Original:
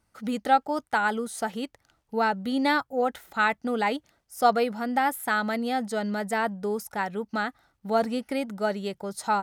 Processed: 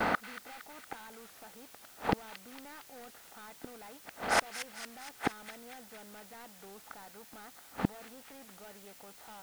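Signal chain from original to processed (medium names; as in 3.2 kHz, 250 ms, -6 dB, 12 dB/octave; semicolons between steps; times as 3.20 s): spectral levelling over time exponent 0.6; low-pass 2.8 kHz 12 dB/octave; gate with hold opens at -42 dBFS; bass shelf 240 Hz -5 dB; in parallel at +2 dB: compression 4:1, threshold -35 dBFS, peak gain reduction 17 dB; on the sum: hard clipper -21 dBFS, distortion -8 dB; inverted gate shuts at -28 dBFS, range -42 dB; word length cut 12-bit, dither triangular; on a send: feedback echo behind a high-pass 231 ms, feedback 60%, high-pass 2.2 kHz, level -7.5 dB; on the sum: warped record 33 1/3 rpm, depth 100 cents; trim +15 dB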